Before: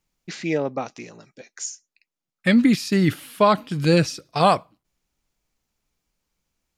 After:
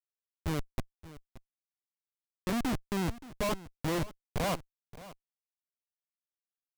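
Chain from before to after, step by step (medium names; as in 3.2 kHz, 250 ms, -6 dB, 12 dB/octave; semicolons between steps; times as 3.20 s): dynamic bell 200 Hz, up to -4 dB, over -28 dBFS, Q 2.5; Schmitt trigger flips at -17.5 dBFS; on a send: delay 575 ms -17.5 dB; on the sum: trim -5 dB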